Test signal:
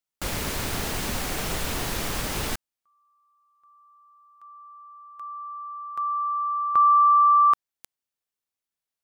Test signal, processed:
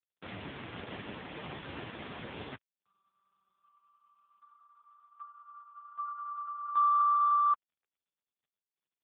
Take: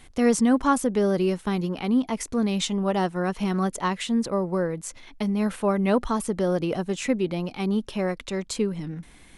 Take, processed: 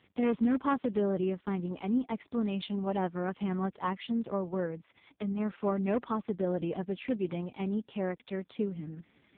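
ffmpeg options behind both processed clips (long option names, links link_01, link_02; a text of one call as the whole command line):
ffmpeg -i in.wav -af "aeval=exprs='0.2*(abs(mod(val(0)/0.2+3,4)-2)-1)':channel_layout=same,volume=-6.5dB" -ar 8000 -c:a libopencore_amrnb -b:a 4750 out.amr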